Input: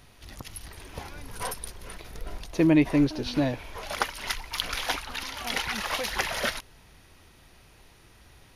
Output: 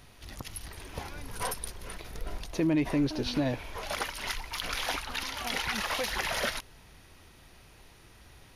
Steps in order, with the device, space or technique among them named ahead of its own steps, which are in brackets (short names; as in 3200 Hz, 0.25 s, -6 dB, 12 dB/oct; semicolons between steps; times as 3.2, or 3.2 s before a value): clipper into limiter (hard clip -12 dBFS, distortion -29 dB; limiter -19.5 dBFS, peak gain reduction 7.5 dB)